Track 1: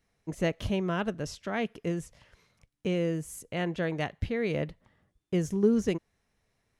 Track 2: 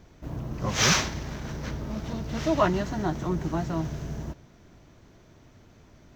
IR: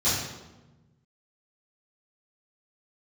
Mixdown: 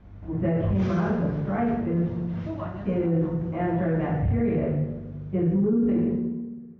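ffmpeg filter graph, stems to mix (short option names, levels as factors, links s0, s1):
-filter_complex "[0:a]lowpass=1700,volume=0.668,asplit=3[s0][s1][s2];[s1]volume=0.531[s3];[1:a]acompressor=threshold=0.00708:ratio=2,aeval=exprs='val(0)+0.00282*(sin(2*PI*50*n/s)+sin(2*PI*2*50*n/s)/2+sin(2*PI*3*50*n/s)/3+sin(2*PI*4*50*n/s)/4+sin(2*PI*5*50*n/s)/5)':c=same,volume=0.841,asplit=2[s4][s5];[s5]volume=0.188[s6];[s2]apad=whole_len=271516[s7];[s4][s7]sidechaincompress=threshold=0.02:ratio=8:attack=16:release=132[s8];[2:a]atrim=start_sample=2205[s9];[s3][s6]amix=inputs=2:normalize=0[s10];[s10][s9]afir=irnorm=-1:irlink=0[s11];[s0][s8][s11]amix=inputs=3:normalize=0,lowpass=2100,alimiter=limit=0.15:level=0:latency=1:release=15"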